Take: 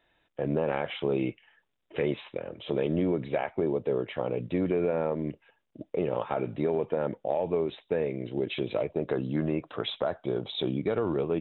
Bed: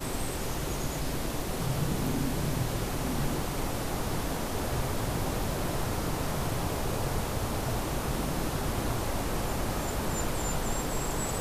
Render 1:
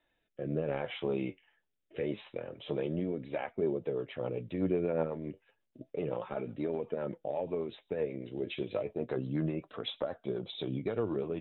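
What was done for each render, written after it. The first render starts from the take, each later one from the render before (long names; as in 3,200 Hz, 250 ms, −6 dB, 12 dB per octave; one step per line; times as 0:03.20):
flanger 0.3 Hz, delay 3.2 ms, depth 9.2 ms, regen +58%
rotating-speaker cabinet horn 0.7 Hz, later 8 Hz, at 0:03.11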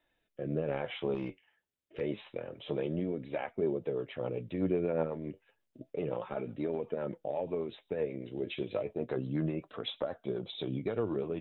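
0:01.14–0:02.01: tube saturation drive 29 dB, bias 0.4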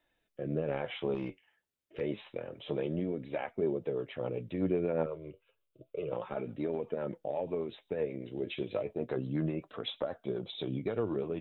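0:05.06–0:06.12: phaser with its sweep stopped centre 1,200 Hz, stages 8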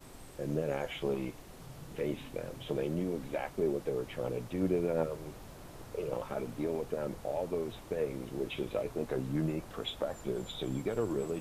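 mix in bed −18.5 dB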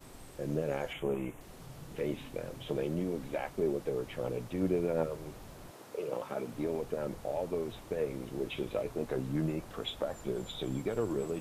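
0:00.93–0:01.41: Butterworth band-reject 4,600 Hz, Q 1.2
0:05.70–0:06.53: high-pass filter 290 Hz → 120 Hz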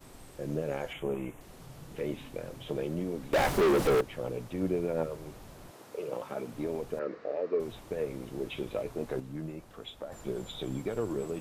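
0:03.33–0:04.01: leveller curve on the samples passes 5
0:06.99–0:07.60: loudspeaker in its box 290–4,300 Hz, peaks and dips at 310 Hz +4 dB, 450 Hz +8 dB, 850 Hz −10 dB, 1,200 Hz +6 dB, 1,800 Hz +7 dB, 3,300 Hz −9 dB
0:09.20–0:10.12: clip gain −6.5 dB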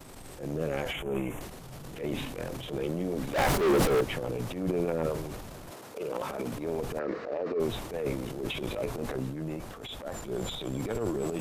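transient designer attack −12 dB, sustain +9 dB
in parallel at −3 dB: downward compressor, threshold −38 dBFS, peak gain reduction 15 dB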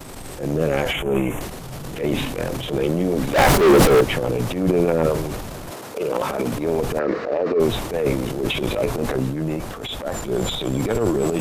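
level +11 dB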